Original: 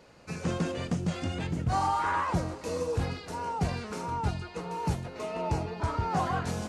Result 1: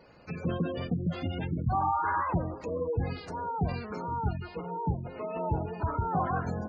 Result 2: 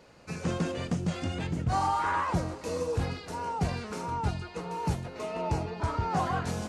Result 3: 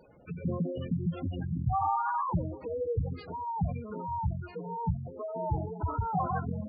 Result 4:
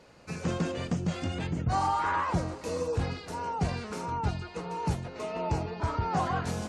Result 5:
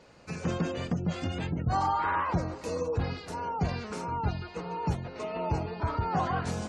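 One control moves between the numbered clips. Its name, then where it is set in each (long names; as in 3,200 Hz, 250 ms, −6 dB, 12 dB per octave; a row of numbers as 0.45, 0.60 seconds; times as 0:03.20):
gate on every frequency bin, under each frame's peak: −20, −60, −10, −45, −35 decibels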